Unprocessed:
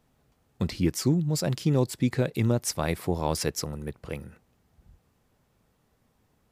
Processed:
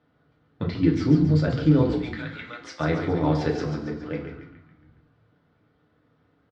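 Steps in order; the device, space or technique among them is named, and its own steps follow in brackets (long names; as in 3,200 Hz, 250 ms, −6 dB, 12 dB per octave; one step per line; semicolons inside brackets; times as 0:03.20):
0:01.93–0:02.80: high-pass filter 1,500 Hz 12 dB per octave
frequency-shifting delay pedal into a guitar cabinet (echo with shifted repeats 139 ms, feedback 51%, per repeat −77 Hz, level −7 dB; loudspeaker in its box 97–3,700 Hz, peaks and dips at 900 Hz −5 dB, 1,400 Hz +6 dB, 2,600 Hz −6 dB)
feedback delay network reverb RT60 0.49 s, low-frequency decay 1.2×, high-frequency decay 0.75×, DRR −0.5 dB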